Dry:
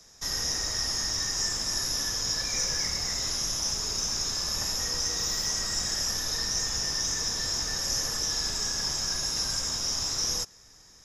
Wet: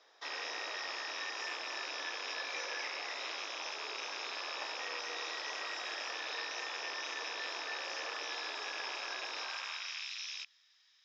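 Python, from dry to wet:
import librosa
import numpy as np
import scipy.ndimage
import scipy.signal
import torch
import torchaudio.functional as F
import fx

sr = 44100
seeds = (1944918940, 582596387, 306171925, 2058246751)

y = fx.rattle_buzz(x, sr, strikes_db=-46.0, level_db=-28.0)
y = scipy.signal.sosfilt(scipy.signal.ellip(3, 1.0, 50, [300.0, 3700.0], 'bandpass', fs=sr, output='sos'), y)
y = fx.filter_sweep_highpass(y, sr, from_hz=530.0, to_hz=2800.0, start_s=9.35, end_s=10.12, q=1.0)
y = F.gain(torch.from_numpy(y), -1.5).numpy()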